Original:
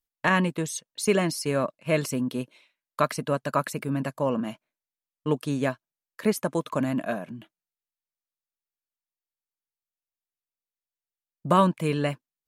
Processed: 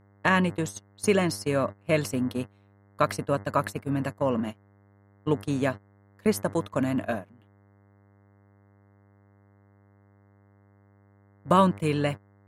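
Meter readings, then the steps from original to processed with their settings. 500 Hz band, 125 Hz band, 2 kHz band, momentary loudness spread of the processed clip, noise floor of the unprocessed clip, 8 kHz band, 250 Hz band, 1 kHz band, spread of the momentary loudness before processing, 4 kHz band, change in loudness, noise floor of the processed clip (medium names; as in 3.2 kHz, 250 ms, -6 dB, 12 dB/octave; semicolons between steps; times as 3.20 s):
0.0 dB, 0.0 dB, 0.0 dB, 10 LU, under -85 dBFS, -3.0 dB, 0.0 dB, 0.0 dB, 12 LU, -1.0 dB, 0.0 dB, -59 dBFS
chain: mains buzz 100 Hz, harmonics 21, -41 dBFS -6 dB/octave; gate -30 dBFS, range -18 dB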